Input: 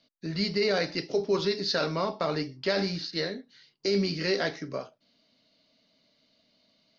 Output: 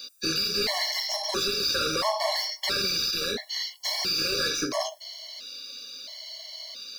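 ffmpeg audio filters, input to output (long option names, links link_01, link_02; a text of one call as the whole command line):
ffmpeg -i in.wav -filter_complex "[0:a]acrossover=split=170[link_01][link_02];[link_02]alimiter=level_in=3dB:limit=-24dB:level=0:latency=1:release=126,volume=-3dB[link_03];[link_01][link_03]amix=inputs=2:normalize=0,bass=frequency=250:gain=-12,treble=frequency=4000:gain=14,crystalizer=i=3:c=0,asplit=2[link_04][link_05];[link_05]highpass=frequency=720:poles=1,volume=33dB,asoftclip=type=tanh:threshold=-9dB[link_06];[link_04][link_06]amix=inputs=2:normalize=0,lowpass=frequency=2400:poles=1,volume=-6dB,afftfilt=real='re*gt(sin(2*PI*0.74*pts/sr)*(1-2*mod(floor(b*sr/1024/570),2)),0)':imag='im*gt(sin(2*PI*0.74*pts/sr)*(1-2*mod(floor(b*sr/1024/570),2)),0)':win_size=1024:overlap=0.75,volume=-3dB" out.wav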